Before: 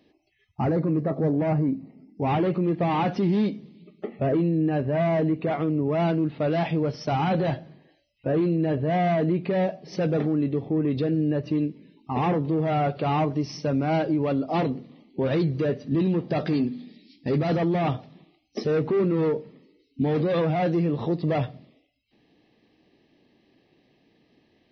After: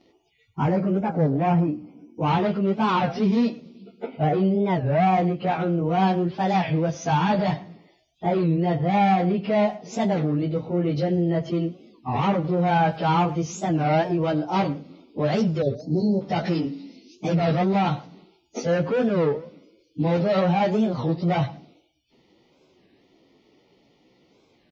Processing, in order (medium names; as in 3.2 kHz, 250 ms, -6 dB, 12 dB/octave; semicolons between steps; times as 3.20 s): frequency-domain pitch shifter +2 st; time-frequency box 15.65–16.21 s, 950–3900 Hz -29 dB; dynamic bell 350 Hz, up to -7 dB, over -39 dBFS, Q 1.2; speakerphone echo 110 ms, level -18 dB; warped record 33 1/3 rpm, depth 250 cents; trim +6.5 dB